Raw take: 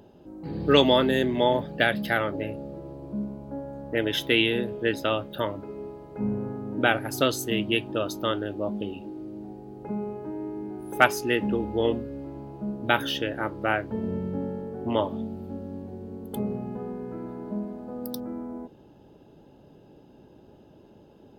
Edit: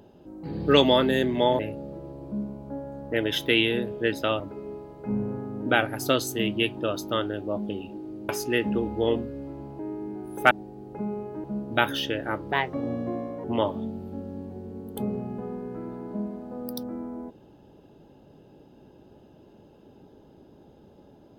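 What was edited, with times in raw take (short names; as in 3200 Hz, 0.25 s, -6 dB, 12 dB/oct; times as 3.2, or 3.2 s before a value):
1.59–2.4 cut
5.21–5.52 cut
9.41–10.34 swap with 11.06–12.56
13.64–14.81 speed 127%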